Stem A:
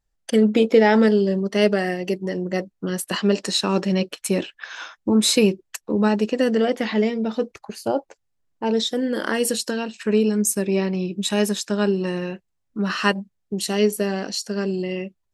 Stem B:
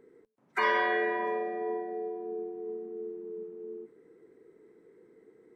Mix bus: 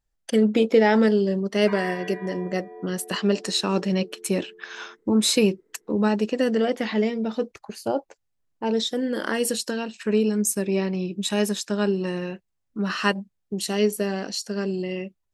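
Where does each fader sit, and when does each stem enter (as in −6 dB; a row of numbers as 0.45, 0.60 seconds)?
−2.5, −8.5 decibels; 0.00, 1.10 seconds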